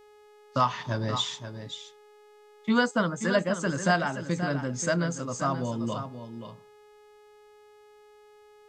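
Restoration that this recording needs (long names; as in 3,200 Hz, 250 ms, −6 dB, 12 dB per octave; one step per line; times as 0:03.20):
hum removal 419.4 Hz, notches 37
echo removal 529 ms −10 dB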